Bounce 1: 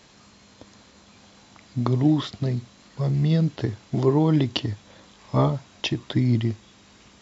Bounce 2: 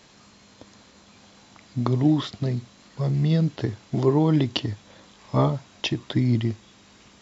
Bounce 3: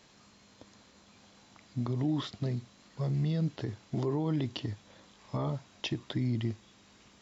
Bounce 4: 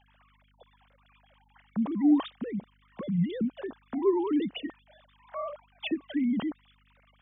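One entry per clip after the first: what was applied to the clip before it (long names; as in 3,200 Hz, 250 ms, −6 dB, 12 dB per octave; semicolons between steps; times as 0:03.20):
parametric band 62 Hz −3 dB 1.2 octaves
brickwall limiter −16 dBFS, peak gain reduction 8.5 dB; level −7 dB
three sine waves on the formant tracks; mains hum 50 Hz, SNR 35 dB; level +3.5 dB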